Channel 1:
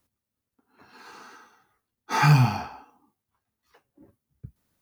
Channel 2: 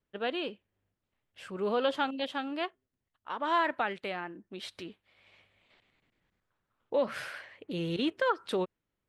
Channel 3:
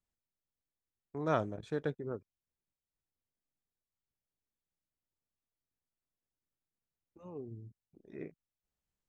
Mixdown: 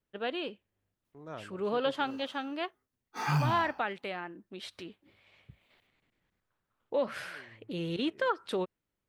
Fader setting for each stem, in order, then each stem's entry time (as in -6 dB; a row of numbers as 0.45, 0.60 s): -11.5, -1.5, -12.5 dB; 1.05, 0.00, 0.00 s